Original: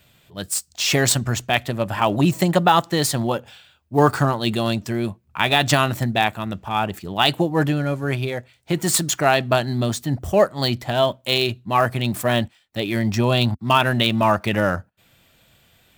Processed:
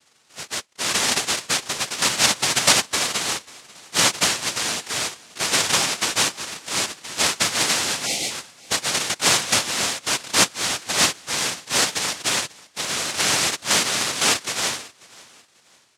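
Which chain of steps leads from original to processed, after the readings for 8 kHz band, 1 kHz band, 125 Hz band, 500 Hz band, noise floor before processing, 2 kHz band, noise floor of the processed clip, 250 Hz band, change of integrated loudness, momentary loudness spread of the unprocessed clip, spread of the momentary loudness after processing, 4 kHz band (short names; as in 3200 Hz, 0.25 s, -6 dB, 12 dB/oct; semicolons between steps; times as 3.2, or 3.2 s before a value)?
+8.0 dB, -6.0 dB, -16.5 dB, -10.0 dB, -58 dBFS, +1.0 dB, -58 dBFS, -12.0 dB, 0.0 dB, 8 LU, 8 LU, +4.0 dB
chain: fixed phaser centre 320 Hz, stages 8; noise vocoder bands 1; spectral delete 8.06–8.31, 880–1900 Hz; on a send: feedback echo 0.54 s, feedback 32%, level -22.5 dB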